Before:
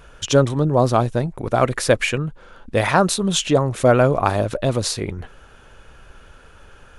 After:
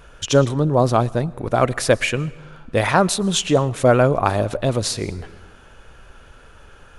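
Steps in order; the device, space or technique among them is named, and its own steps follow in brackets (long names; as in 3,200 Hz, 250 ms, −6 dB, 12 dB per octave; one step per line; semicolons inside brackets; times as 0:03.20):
compressed reverb return (on a send at −10.5 dB: convolution reverb RT60 0.95 s, pre-delay 104 ms + downward compressor 6 to 1, threshold −28 dBFS, peak gain reduction 18 dB)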